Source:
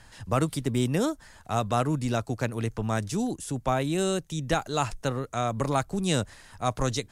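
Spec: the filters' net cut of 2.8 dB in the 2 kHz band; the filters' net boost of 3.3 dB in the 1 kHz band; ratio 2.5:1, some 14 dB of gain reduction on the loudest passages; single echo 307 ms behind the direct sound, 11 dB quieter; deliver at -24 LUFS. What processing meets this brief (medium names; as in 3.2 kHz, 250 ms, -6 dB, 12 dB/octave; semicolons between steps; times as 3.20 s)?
peaking EQ 1 kHz +6.5 dB; peaking EQ 2 kHz -7 dB; compression 2.5:1, threshold -40 dBFS; delay 307 ms -11 dB; trim +15 dB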